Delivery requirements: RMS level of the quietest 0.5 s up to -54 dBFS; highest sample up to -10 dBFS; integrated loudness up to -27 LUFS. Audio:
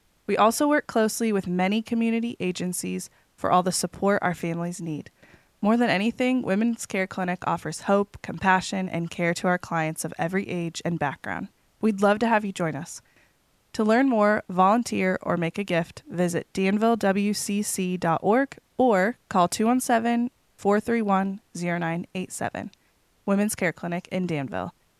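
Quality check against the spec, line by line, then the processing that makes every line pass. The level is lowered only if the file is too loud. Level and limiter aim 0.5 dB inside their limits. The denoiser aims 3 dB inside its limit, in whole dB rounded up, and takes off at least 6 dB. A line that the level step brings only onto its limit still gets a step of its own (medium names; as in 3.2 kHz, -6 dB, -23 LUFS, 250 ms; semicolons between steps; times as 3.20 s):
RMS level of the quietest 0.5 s -65 dBFS: pass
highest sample -5.5 dBFS: fail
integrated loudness -25.0 LUFS: fail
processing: trim -2.5 dB; peak limiter -10.5 dBFS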